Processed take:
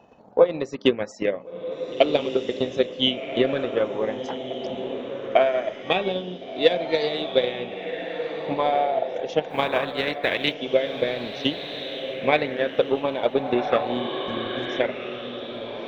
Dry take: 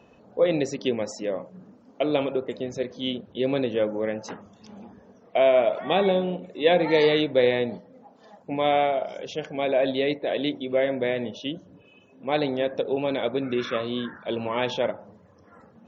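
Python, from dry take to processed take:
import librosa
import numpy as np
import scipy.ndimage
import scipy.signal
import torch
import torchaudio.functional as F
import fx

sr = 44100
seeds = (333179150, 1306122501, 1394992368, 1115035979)

p1 = fx.spec_flatten(x, sr, power=0.56, at=(9.48, 10.53), fade=0.02)
p2 = 10.0 ** (-20.0 / 20.0) * np.tanh(p1 / 10.0 ** (-20.0 / 20.0))
p3 = p1 + F.gain(torch.from_numpy(p2), -10.5).numpy()
p4 = fx.rider(p3, sr, range_db=3, speed_s=0.5)
p5 = fx.transient(p4, sr, attack_db=12, sustain_db=-6)
p6 = p5 + fx.echo_diffused(p5, sr, ms=1440, feedback_pct=42, wet_db=-8.0, dry=0)
p7 = fx.spec_repair(p6, sr, seeds[0], start_s=14.03, length_s=0.74, low_hz=280.0, high_hz=4900.0, source='before')
p8 = fx.bell_lfo(p7, sr, hz=0.22, low_hz=780.0, high_hz=4500.0, db=9)
y = F.gain(torch.from_numpy(p8), -6.5).numpy()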